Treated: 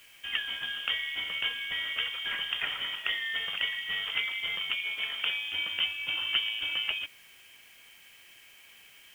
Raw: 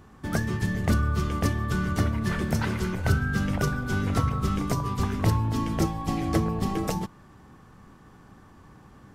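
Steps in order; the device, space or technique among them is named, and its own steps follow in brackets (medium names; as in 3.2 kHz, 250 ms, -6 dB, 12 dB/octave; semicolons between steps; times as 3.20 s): scrambled radio voice (band-pass 330–2700 Hz; frequency inversion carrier 3.4 kHz; white noise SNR 26 dB); 4.77–5.32 s: high-pass 220 Hz -> 100 Hz 6 dB/octave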